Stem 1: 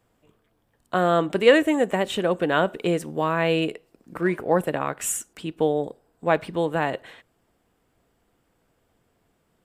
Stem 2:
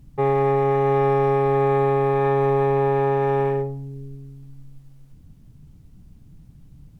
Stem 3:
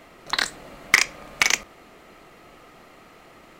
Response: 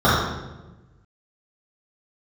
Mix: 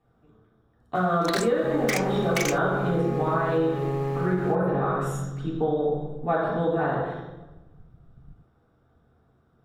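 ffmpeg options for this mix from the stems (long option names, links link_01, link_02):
-filter_complex "[0:a]volume=-8.5dB,asplit=2[link_01][link_02];[link_02]volume=-17dB[link_03];[1:a]agate=range=-11dB:threshold=-42dB:ratio=16:detection=peak,adelay=1450,volume=-3.5dB[link_04];[2:a]asoftclip=type=tanh:threshold=-19dB,adelay=950,volume=3dB[link_05];[link_01][link_04]amix=inputs=2:normalize=0,bass=frequency=250:gain=9,treble=frequency=4000:gain=-13,acompressor=threshold=-39dB:ratio=1.5,volume=0dB[link_06];[3:a]atrim=start_sample=2205[link_07];[link_03][link_07]afir=irnorm=-1:irlink=0[link_08];[link_05][link_06][link_08]amix=inputs=3:normalize=0,acompressor=threshold=-20dB:ratio=6"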